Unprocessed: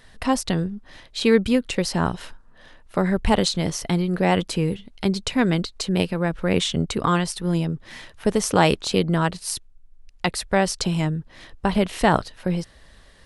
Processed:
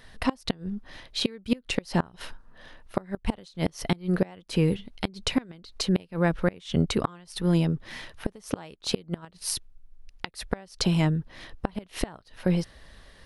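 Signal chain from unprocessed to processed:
parametric band 7,600 Hz −6 dB 0.4 octaves
gate with flip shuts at −10 dBFS, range −27 dB

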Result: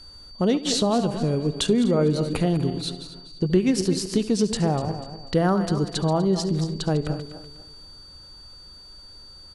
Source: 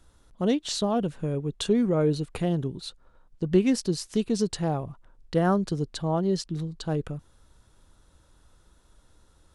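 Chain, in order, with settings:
feedback delay that plays each chunk backwards 123 ms, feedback 54%, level −10.5 dB
repeating echo 71 ms, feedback 39%, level −18 dB
steady tone 4,600 Hz −51 dBFS
downward compressor 2 to 1, threshold −27 dBFS, peak gain reduction 7.5 dB
level +7 dB

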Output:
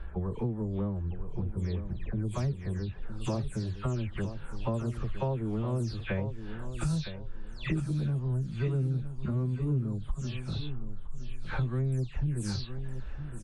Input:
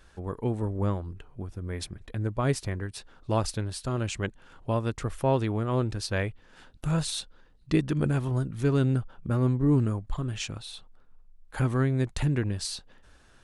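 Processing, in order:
every frequency bin delayed by itself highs early, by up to 242 ms
low-pass that shuts in the quiet parts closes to 2,000 Hz, open at −22.5 dBFS
high-shelf EQ 6,100 Hz +9 dB
harmonic and percussive parts rebalanced harmonic +9 dB
low-shelf EQ 220 Hz +11.5 dB
downward compressor 6 to 1, threshold −30 dBFS, peak gain reduction 23 dB
on a send: repeating echo 963 ms, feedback 25%, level −10.5 dB

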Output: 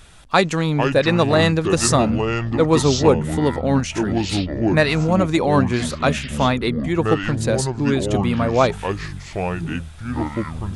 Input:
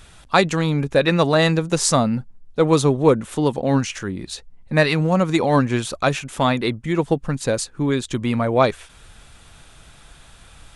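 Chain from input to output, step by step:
delay with pitch and tempo change per echo 310 ms, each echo −6 semitones, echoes 3, each echo −6 dB

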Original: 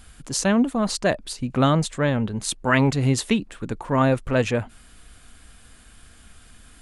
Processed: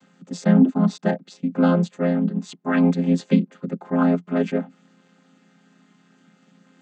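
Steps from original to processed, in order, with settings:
channel vocoder with a chord as carrier minor triad, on F3
level +2.5 dB

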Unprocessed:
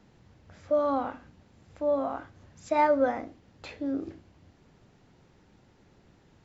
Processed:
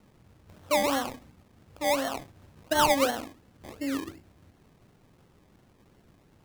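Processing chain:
gap after every zero crossing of 0.063 ms
sample-and-hold swept by an LFO 25×, swing 60% 2.8 Hz

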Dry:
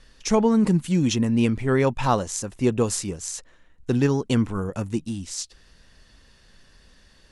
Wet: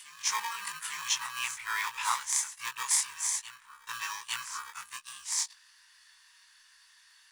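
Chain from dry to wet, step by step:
every overlapping window played backwards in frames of 50 ms
high-shelf EQ 6,600 Hz +12 dB
in parallel at −7 dB: sample-rate reduction 1,400 Hz, jitter 0%
on the sum: elliptic high-pass filter 970 Hz, stop band 40 dB
parametric band 1,700 Hz +2 dB
on a send: backwards echo 856 ms −12 dB
on the sum: level −1 dB

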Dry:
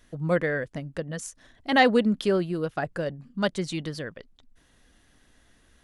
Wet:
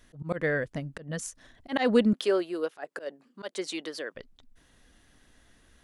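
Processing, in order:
0:02.13–0:04.15: high-pass filter 330 Hz 24 dB per octave
volume swells 139 ms

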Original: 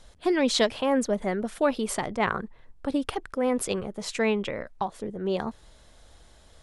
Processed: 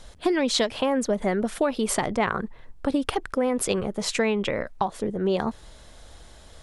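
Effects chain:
downward compressor 6 to 1, threshold −26 dBFS, peak gain reduction 9 dB
level +6.5 dB

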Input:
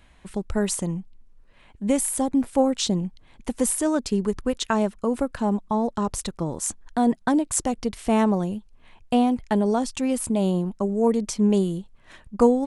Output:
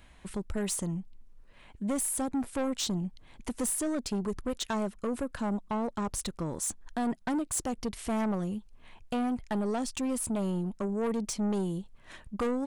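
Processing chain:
high-shelf EQ 9,800 Hz +4 dB
in parallel at −2.5 dB: downward compressor, threshold −32 dBFS, peak gain reduction 19 dB
on the sum: soft clipping −20 dBFS, distortion −9 dB
level −6 dB

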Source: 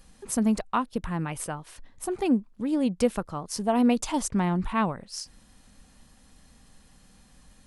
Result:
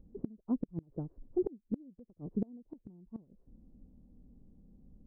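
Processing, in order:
transistor ladder low-pass 450 Hz, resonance 30%
phase-vocoder stretch with locked phases 0.66×
gate with flip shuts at −28 dBFS, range −30 dB
level +6 dB

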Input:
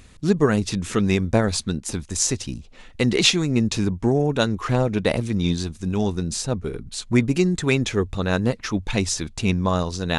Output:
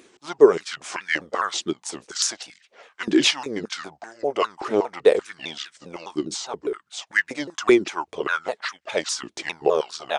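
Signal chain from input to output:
pitch shifter swept by a sawtooth −5.5 semitones, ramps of 202 ms
downsampling to 32,000 Hz
high-pass on a step sequencer 5.2 Hz 350–1,700 Hz
level −1.5 dB

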